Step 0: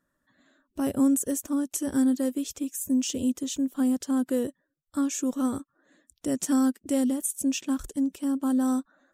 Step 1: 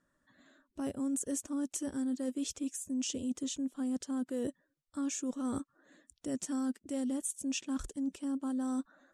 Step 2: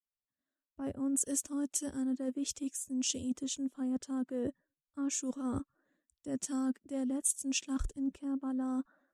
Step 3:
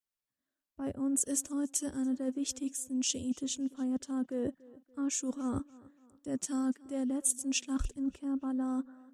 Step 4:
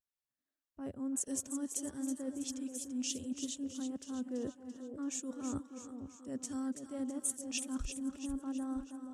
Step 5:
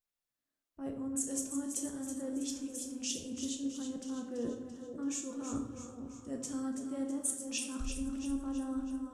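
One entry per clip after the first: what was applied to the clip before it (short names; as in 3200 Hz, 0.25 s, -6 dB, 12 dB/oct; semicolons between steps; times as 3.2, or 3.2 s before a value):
LPF 9800 Hz 24 dB/oct; reverse; compressor, threshold -33 dBFS, peak gain reduction 13.5 dB; reverse
three-band expander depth 100%
tape echo 0.288 s, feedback 49%, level -20.5 dB, low-pass 3700 Hz; gain +1.5 dB
split-band echo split 870 Hz, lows 0.481 s, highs 0.331 s, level -8 dB; vibrato 0.61 Hz 37 cents; gain -6 dB
shoebox room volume 210 m³, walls mixed, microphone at 0.81 m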